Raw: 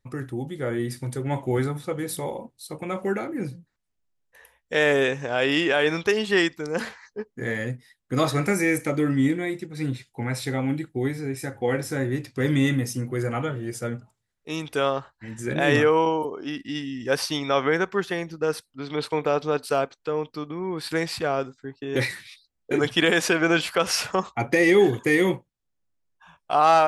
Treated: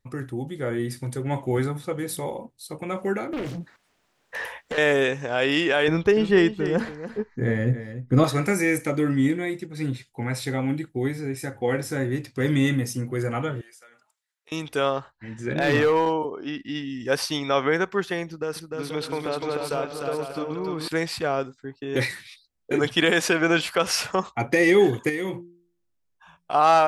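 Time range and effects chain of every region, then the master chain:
0:03.33–0:04.78: downward compressor 8 to 1, threshold −41 dBFS + mid-hump overdrive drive 34 dB, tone 2,200 Hz, clips at −18.5 dBFS + highs frequency-modulated by the lows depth 0.48 ms
0:05.88–0:08.24: spectral tilt −3 dB per octave + single-tap delay 288 ms −12 dB
0:13.61–0:14.52: high-pass filter 1,100 Hz + downward compressor 5 to 1, threshold −49 dBFS
0:15.12–0:16.90: low-pass filter 4,800 Hz + hard clipping −14.5 dBFS
0:18.26–0:20.88: downward compressor 2.5 to 1, threshold −25 dBFS + bouncing-ball delay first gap 300 ms, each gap 0.6×, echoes 5
0:25.09–0:26.54: hum removal 173.4 Hz, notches 2 + downward compressor 3 to 1, threshold −27 dBFS
whole clip: no processing

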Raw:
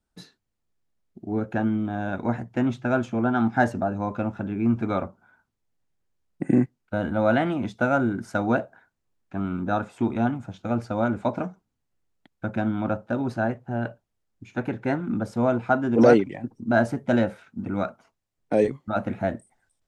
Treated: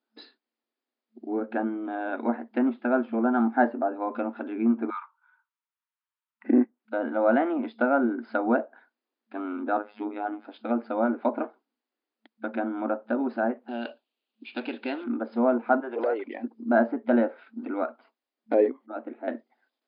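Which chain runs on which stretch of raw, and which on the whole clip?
0:04.90–0:06.45: Chebyshev high-pass with heavy ripple 900 Hz, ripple 3 dB + high-frequency loss of the air 320 metres
0:09.77–0:10.45: phases set to zero 104 Hz + parametric band 1,000 Hz −3 dB 0.28 octaves
0:13.68–0:15.04: running median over 9 samples + flat-topped bell 3,400 Hz +15 dB 1.1 octaves + downward compressor 3 to 1, threshold −27 dBFS
0:15.80–0:16.28: high-pass filter 420 Hz 24 dB per octave + downward compressor 2 to 1, threshold −29 dBFS
0:18.86–0:19.28: four-pole ladder high-pass 270 Hz, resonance 50% + high-frequency loss of the air 410 metres
whole clip: treble cut that deepens with the level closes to 1,500 Hz, closed at −21.5 dBFS; brick-wall band-pass 220–5,100 Hz

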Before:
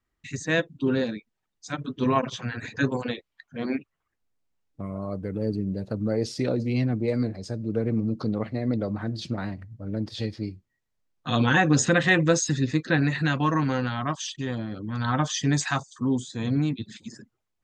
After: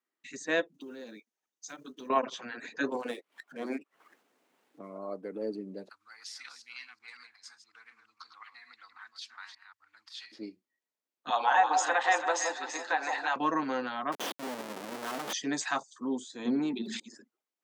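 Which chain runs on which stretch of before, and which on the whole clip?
0:00.74–0:02.10: one scale factor per block 7 bits + parametric band 6,300 Hz +10 dB 0.26 octaves + downward compressor 12 to 1, threshold −32 dBFS
0:02.89–0:04.98: running median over 9 samples + upward compression, threshold −29 dBFS
0:05.89–0:10.32: delay that plays each chunk backwards 183 ms, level −9 dB + inverse Chebyshev band-stop filter 120–620 Hz
0:11.30–0:13.36: high-pass with resonance 830 Hz, resonance Q 5 + downward compressor 1.5 to 1, threshold −25 dBFS + delay that swaps between a low-pass and a high-pass 167 ms, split 1,100 Hz, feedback 62%, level −4 dB
0:14.12–0:15.33: high-pass filter 42 Hz + high-shelf EQ 3,700 Hz −10 dB + comparator with hysteresis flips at −37.5 dBFS
0:16.45–0:17.00: hollow resonant body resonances 230/370/880 Hz, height 12 dB, ringing for 65 ms + level that may fall only so fast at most 46 dB per second
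whole clip: high-pass filter 260 Hz 24 dB per octave; dynamic equaliser 790 Hz, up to +4 dB, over −38 dBFS, Q 0.89; level −6 dB

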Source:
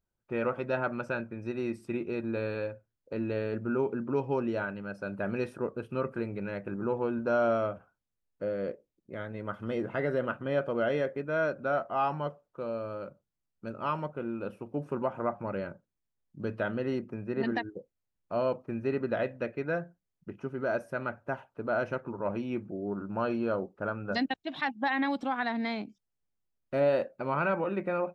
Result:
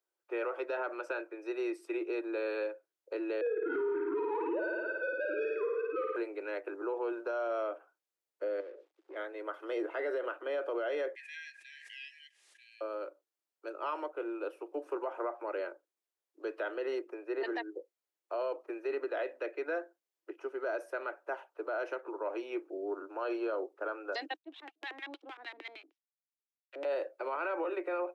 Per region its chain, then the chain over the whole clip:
0:03.41–0:06.16: three sine waves on the formant tracks + mid-hump overdrive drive 13 dB, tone 1,100 Hz, clips at −18.5 dBFS + flutter between parallel walls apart 9.3 metres, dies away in 1.1 s
0:08.60–0:09.16: mu-law and A-law mismatch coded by mu + low-pass filter 3,500 Hz + downward compressor 10 to 1, threshold −41 dBFS
0:11.15–0:12.81: linear-phase brick-wall high-pass 1,600 Hz + bad sample-rate conversion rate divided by 2×, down none, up filtered + background raised ahead of every attack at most 37 dB per second
0:24.37–0:26.85: mu-law and A-law mismatch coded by A + auto-filter band-pass square 6.5 Hz 230–2,800 Hz
whole clip: Butterworth high-pass 310 Hz 96 dB per octave; brickwall limiter −27 dBFS

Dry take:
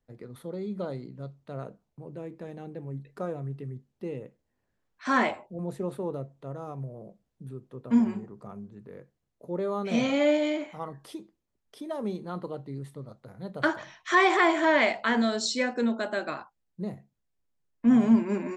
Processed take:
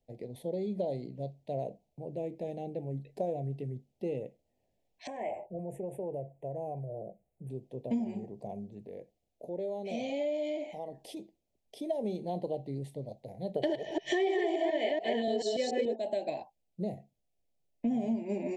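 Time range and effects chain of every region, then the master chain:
0:05.07–0:07.50: Butterworth band-reject 4,400 Hz, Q 0.78 + parametric band 250 Hz −15 dB 0.22 octaves + downward compressor 5 to 1, threshold −36 dBFS
0:08.82–0:11.17: parametric band 140 Hz −8 dB 0.41 octaves + downward compressor 2 to 1, threshold −42 dBFS
0:13.55–0:15.96: delay that plays each chunk backwards 144 ms, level −1 dB + hollow resonant body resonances 400/1,800/3,000 Hz, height 15 dB, ringing for 35 ms
whole clip: Chebyshev band-stop filter 710–2,400 Hz, order 2; parametric band 680 Hz +8.5 dB 0.83 octaves; downward compressor 6 to 1, threshold −29 dBFS

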